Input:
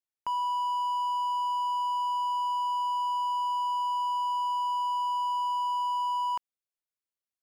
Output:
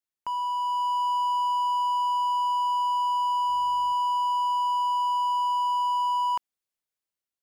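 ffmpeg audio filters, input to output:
-filter_complex "[0:a]dynaudnorm=f=280:g=5:m=1.58,asettb=1/sr,asplit=3[s0][s1][s2];[s0]atrim=end=3.484[s3];[s1]atrim=start=3.48:end=3.93,asetpts=PTS-STARTPTS,afade=t=in:d=0.004:c=qsin,afade=t=out:st=0.446:d=0.004:c=qsin,aeval=exprs='val(0)+0.00126*(sin(2*PI*50*n/s)+sin(2*PI*2*50*n/s)/2+sin(2*PI*3*50*n/s)/3+sin(2*PI*4*50*n/s)/4+sin(2*PI*5*50*n/s)/5)':c=same[s4];[s2]atrim=start=3.926[s5];[s3][s4]acrossfade=d=0.004:c1=hsin:c2=qsin[s6];[s6][s5]acrossfade=d=0.004:c1=qsin:c2=hsin"

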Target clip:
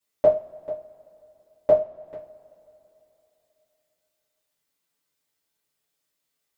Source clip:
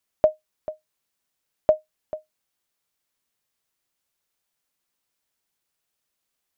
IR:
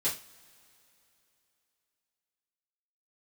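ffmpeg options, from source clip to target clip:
-filter_complex "[0:a]asplit=3[s0][s1][s2];[s0]afade=t=out:st=1.75:d=0.02[s3];[s1]acompressor=threshold=0.0112:ratio=6,afade=t=in:st=1.75:d=0.02,afade=t=out:st=2.16:d=0.02[s4];[s2]afade=t=in:st=2.16:d=0.02[s5];[s3][s4][s5]amix=inputs=3:normalize=0[s6];[1:a]atrim=start_sample=2205[s7];[s6][s7]afir=irnorm=-1:irlink=0,volume=0.562"

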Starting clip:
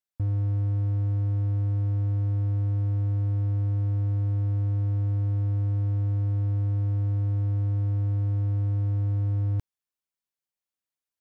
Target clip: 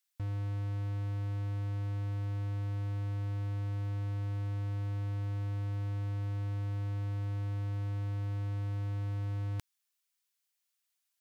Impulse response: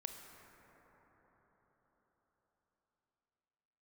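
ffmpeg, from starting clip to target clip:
-af "tiltshelf=f=870:g=-10"

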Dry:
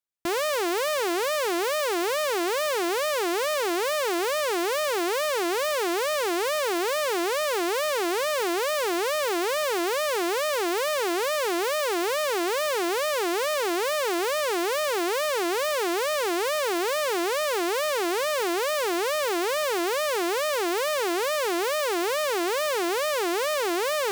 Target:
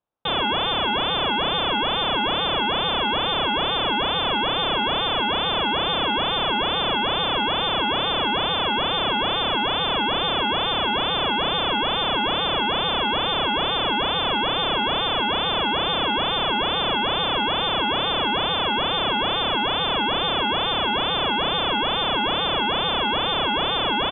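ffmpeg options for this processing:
-filter_complex "[0:a]asplit=2[s0][s1];[s1]adelay=32,volume=0.237[s2];[s0][s2]amix=inputs=2:normalize=0,aexciter=amount=14.4:drive=5.3:freq=3000,lowpass=f=3300:t=q:w=0.5098,lowpass=f=3300:t=q:w=0.6013,lowpass=f=3300:t=q:w=0.9,lowpass=f=3300:t=q:w=2.563,afreqshift=-3900"

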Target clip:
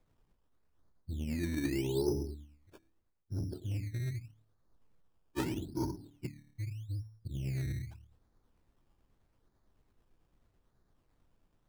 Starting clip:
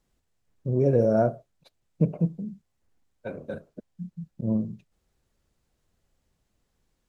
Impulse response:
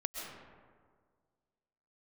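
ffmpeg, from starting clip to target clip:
-filter_complex "[0:a]lowpass=f=2800:w=0.5412,lowpass=f=2800:w=1.3066,bandreject=f=60:t=h:w=6,bandreject=f=120:t=h:w=6,bandreject=f=180:t=h:w=6,bandreject=f=240:t=h:w=6,bandreject=f=300:t=h:w=6,bandreject=f=360:t=h:w=6,bandreject=f=420:t=h:w=6,bandreject=f=480:t=h:w=6,bandreject=f=540:t=h:w=6,areverse,acompressor=threshold=0.0282:ratio=20,areverse,tremolo=f=15:d=0.31,acrossover=split=490[s0][s1];[s0]asoftclip=type=tanh:threshold=0.0141[s2];[s2][s1]amix=inputs=2:normalize=0,asetrate=26725,aresample=44100,acrusher=samples=15:mix=1:aa=0.000001:lfo=1:lforange=15:lforate=0.81,volume=1.68"

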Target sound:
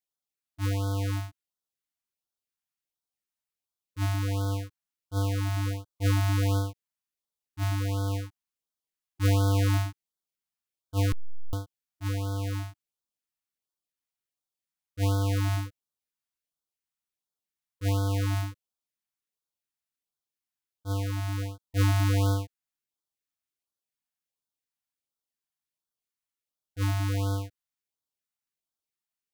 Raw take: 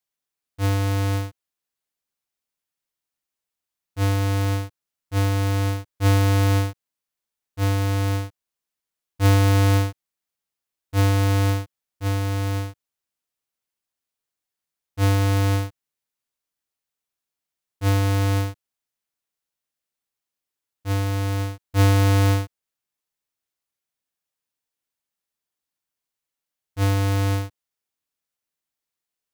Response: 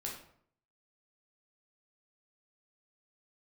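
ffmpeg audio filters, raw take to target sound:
-filter_complex "[0:a]asettb=1/sr,asplit=3[s0][s1][s2];[s0]atrim=end=11.124[s3];[s1]atrim=start=11.12:end=11.53,asetpts=PTS-STARTPTS,afade=t=in:d=0.004:c=qsin,afade=t=out:st=0.406:d=0.004:c=qsin,aeval=exprs='abs(val(0))':c=same[s4];[s2]atrim=start=11.526[s5];[s3][s4]acrossfade=d=0.004:c1=hsin:c2=qsin[s6];[s6][s5]acrossfade=d=0.004:c1=qsin:c2=hsin,afftfilt=real='re*(1-between(b*sr/1024,400*pow(2300/400,0.5+0.5*sin(2*PI*1.4*pts/sr))/1.41,400*pow(2300/400,0.5+0.5*sin(2*PI*1.4*pts/sr))*1.41))':imag='im*(1-between(b*sr/1024,400*pow(2300/400,0.5+0.5*sin(2*PI*1.4*pts/sr))/1.41,400*pow(2300/400,0.5+0.5*sin(2*PI*1.4*pts/sr))*1.41))':win_size=1024:overlap=0.75,volume=0.473"

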